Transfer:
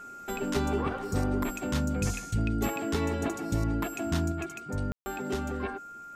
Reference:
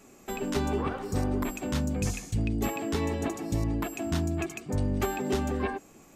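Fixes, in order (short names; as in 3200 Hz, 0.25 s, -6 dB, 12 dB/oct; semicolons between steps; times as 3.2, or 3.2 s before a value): notch 1400 Hz, Q 30; room tone fill 4.92–5.06; gain 0 dB, from 4.32 s +4 dB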